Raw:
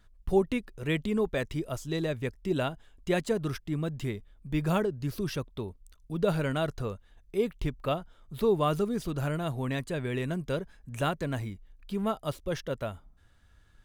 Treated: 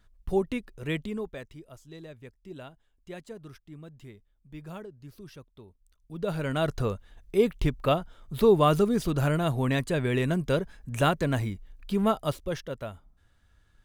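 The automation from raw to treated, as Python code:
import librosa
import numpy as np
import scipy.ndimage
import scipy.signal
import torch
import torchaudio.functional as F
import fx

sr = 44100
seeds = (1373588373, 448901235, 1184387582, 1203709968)

y = fx.gain(x, sr, db=fx.line((0.95, -1.5), (1.59, -14.0), (5.66, -14.0), (6.42, -1.5), (6.75, 5.5), (12.2, 5.5), (12.69, -2.5)))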